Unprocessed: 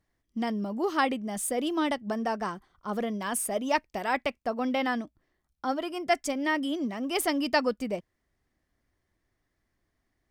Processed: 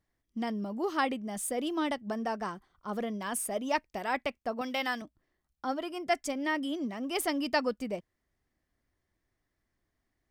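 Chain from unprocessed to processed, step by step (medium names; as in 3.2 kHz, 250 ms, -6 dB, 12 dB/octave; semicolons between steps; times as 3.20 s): 4.61–5.02 s: tilt EQ +3 dB/octave; trim -3.5 dB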